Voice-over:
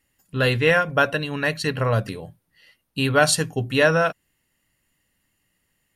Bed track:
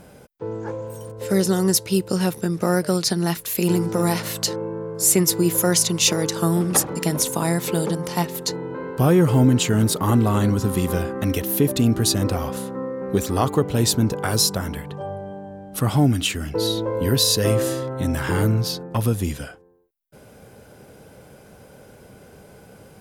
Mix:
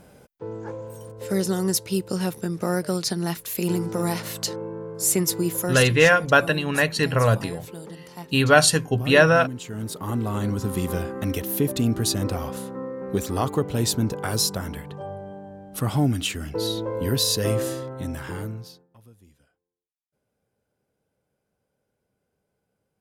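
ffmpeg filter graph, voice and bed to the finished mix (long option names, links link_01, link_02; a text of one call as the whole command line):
ffmpeg -i stem1.wav -i stem2.wav -filter_complex "[0:a]adelay=5350,volume=2dB[link_01];[1:a]volume=8dB,afade=type=out:start_time=5.36:duration=0.77:silence=0.251189,afade=type=in:start_time=9.63:duration=1.19:silence=0.237137,afade=type=out:start_time=17.59:duration=1.28:silence=0.0446684[link_02];[link_01][link_02]amix=inputs=2:normalize=0" out.wav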